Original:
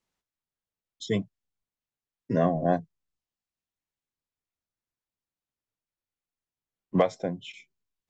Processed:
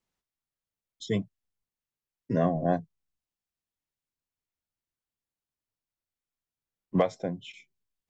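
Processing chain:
low-shelf EQ 190 Hz +3.5 dB
level −2.5 dB

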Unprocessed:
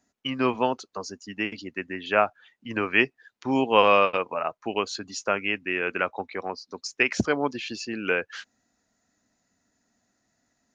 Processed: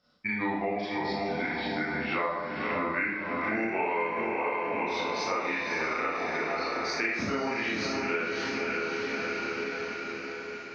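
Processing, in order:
pitch glide at a constant tempo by −4.5 semitones ending unshifted
low-shelf EQ 340 Hz −4.5 dB
on a send: feedback delay with all-pass diffusion 570 ms, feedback 56%, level −5.5 dB
on the sum: four-comb reverb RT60 0.7 s, combs from 26 ms, DRR −9 dB
downward compressor 6 to 1, threshold −28 dBFS, peak gain reduction 19.5 dB
low-pass filter 6,400 Hz 12 dB per octave

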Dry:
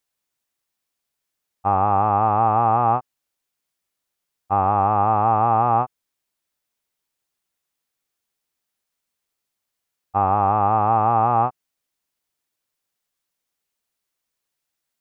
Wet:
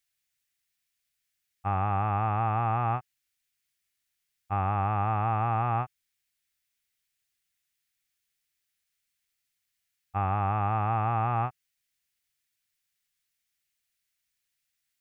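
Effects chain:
graphic EQ with 10 bands 250 Hz −8 dB, 500 Hz −11 dB, 1,000 Hz −11 dB, 2,000 Hz +5 dB

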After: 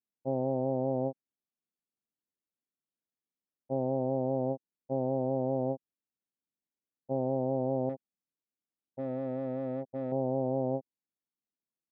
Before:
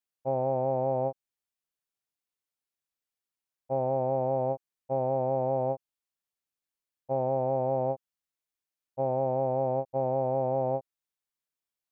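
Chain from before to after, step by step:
0:07.89–0:10.12: gain into a clipping stage and back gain 30.5 dB
resonant band-pass 240 Hz, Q 1.6
level +6 dB

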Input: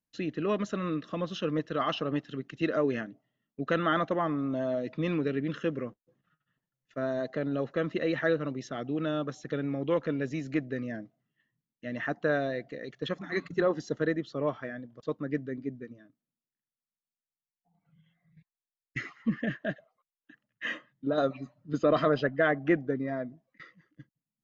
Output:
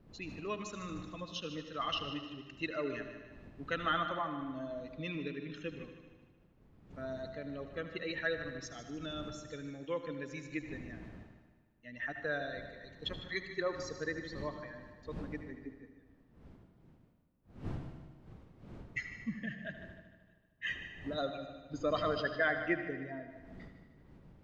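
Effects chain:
spectral dynamics exaggerated over time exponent 1.5
wind on the microphone 190 Hz −45 dBFS
tilt shelving filter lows −6.5 dB, about 1,200 Hz
echo machine with several playback heads 76 ms, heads first and second, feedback 57%, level −14.5 dB
on a send at −10.5 dB: convolution reverb RT60 1.1 s, pre-delay 73 ms
on the sum: level −3 dB

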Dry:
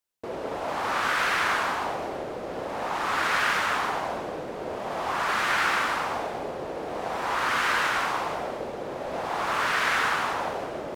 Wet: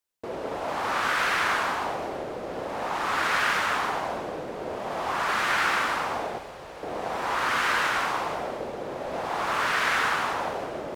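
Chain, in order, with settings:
0:06.38–0:06.83: parametric band 310 Hz −12.5 dB 2.7 octaves

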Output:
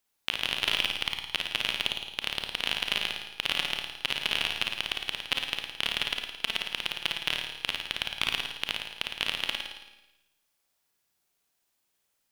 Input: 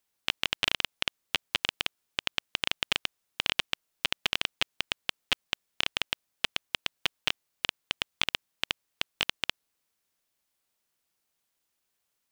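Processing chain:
soft clipping −7 dBFS, distortion −20 dB
flutter between parallel walls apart 9.4 metres, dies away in 0.87 s
four-comb reverb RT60 0.96 s, combs from 28 ms, DRR 6.5 dB

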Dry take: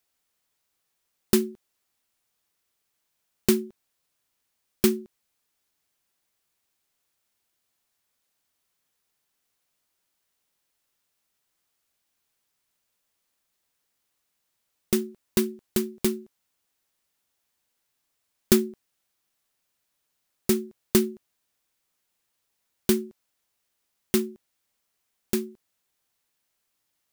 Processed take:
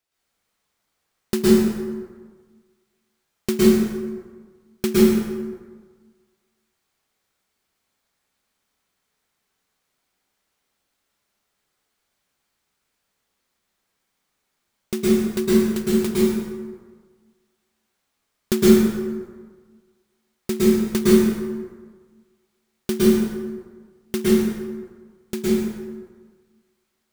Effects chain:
high-shelf EQ 8,000 Hz −8 dB
floating-point word with a short mantissa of 2 bits
dense smooth reverb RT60 1.5 s, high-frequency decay 0.55×, pre-delay 100 ms, DRR −9 dB
level −2.5 dB

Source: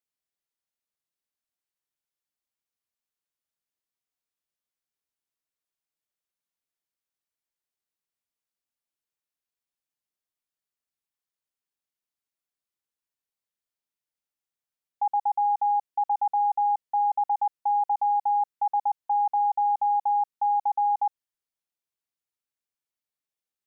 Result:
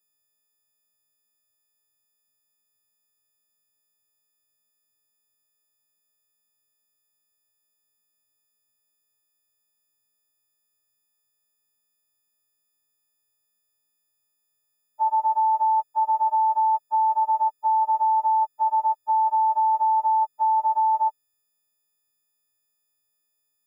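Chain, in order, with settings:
every partial snapped to a pitch grid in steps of 6 semitones
low-shelf EQ 500 Hz +11 dB

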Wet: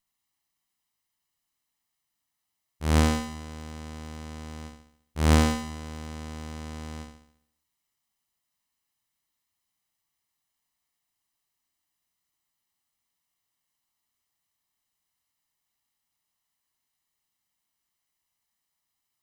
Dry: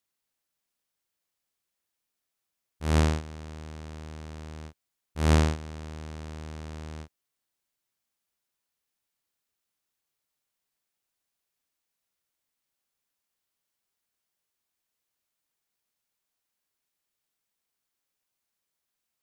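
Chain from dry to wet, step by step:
lower of the sound and its delayed copy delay 1 ms
flutter between parallel walls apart 11.7 metres, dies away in 0.67 s
level +2.5 dB

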